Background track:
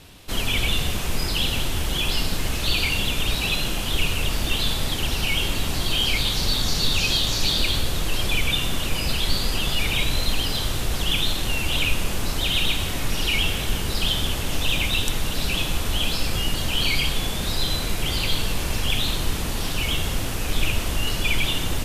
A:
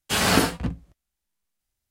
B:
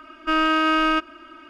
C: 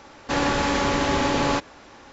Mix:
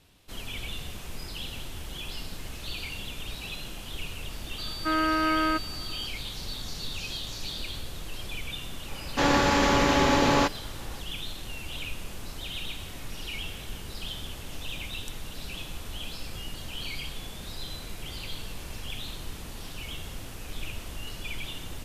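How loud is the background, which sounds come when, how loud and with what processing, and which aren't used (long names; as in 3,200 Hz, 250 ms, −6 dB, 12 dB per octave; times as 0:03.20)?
background track −14 dB
0:04.58: mix in B −5 dB + switching amplifier with a slow clock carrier 4,600 Hz
0:08.88: mix in C
not used: A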